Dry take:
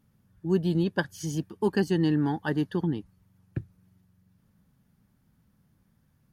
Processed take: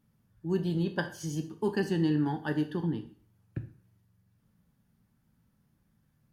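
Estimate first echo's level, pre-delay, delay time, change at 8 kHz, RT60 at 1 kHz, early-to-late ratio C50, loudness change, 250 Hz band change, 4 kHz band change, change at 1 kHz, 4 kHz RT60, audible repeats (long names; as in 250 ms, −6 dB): no echo audible, 4 ms, no echo audible, −3.5 dB, 0.50 s, 12.0 dB, −3.5 dB, −3.5 dB, −3.5 dB, −3.0 dB, 0.45 s, no echo audible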